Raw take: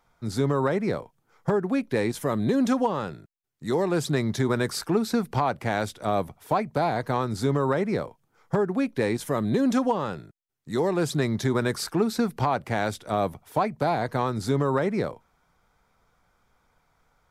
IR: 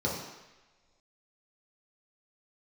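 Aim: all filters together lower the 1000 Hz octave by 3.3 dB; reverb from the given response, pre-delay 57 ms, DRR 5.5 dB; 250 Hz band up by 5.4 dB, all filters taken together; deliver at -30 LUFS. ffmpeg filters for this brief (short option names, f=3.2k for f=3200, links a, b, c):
-filter_complex "[0:a]equalizer=f=250:t=o:g=6.5,equalizer=f=1k:t=o:g=-5,asplit=2[a][b];[1:a]atrim=start_sample=2205,adelay=57[c];[b][c]afir=irnorm=-1:irlink=0,volume=-14dB[d];[a][d]amix=inputs=2:normalize=0,volume=-9.5dB"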